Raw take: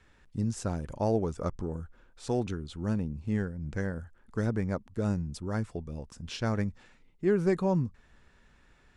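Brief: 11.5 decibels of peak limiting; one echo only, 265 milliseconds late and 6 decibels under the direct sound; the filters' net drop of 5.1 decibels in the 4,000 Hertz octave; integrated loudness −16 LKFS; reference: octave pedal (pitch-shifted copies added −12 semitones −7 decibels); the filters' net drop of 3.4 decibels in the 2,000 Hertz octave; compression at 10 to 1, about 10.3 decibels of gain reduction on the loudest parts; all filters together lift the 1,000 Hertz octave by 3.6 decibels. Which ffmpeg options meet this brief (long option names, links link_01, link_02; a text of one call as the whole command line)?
ffmpeg -i in.wav -filter_complex "[0:a]equalizer=frequency=1000:width_type=o:gain=6.5,equalizer=frequency=2000:width_type=o:gain=-7,equalizer=frequency=4000:width_type=o:gain=-5,acompressor=threshold=-31dB:ratio=10,alimiter=level_in=9.5dB:limit=-24dB:level=0:latency=1,volume=-9.5dB,aecho=1:1:265:0.501,asplit=2[link_01][link_02];[link_02]asetrate=22050,aresample=44100,atempo=2,volume=-7dB[link_03];[link_01][link_03]amix=inputs=2:normalize=0,volume=26.5dB" out.wav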